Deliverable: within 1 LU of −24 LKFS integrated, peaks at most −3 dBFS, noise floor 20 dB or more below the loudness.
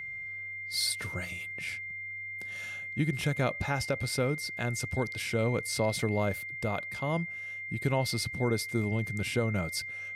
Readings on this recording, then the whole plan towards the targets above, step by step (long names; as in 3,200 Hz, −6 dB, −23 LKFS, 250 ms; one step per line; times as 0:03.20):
interfering tone 2,100 Hz; level of the tone −37 dBFS; integrated loudness −32.0 LKFS; sample peak −17.0 dBFS; target loudness −24.0 LKFS
→ notch filter 2,100 Hz, Q 30
level +8 dB